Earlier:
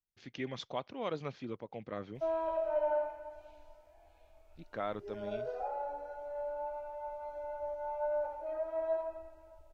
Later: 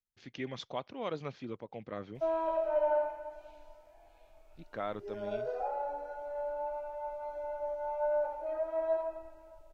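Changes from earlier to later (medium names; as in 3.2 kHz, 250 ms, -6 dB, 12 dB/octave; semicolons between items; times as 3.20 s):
background: add peaking EQ 70 Hz -13 dB 0.33 oct; reverb: on, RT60 0.50 s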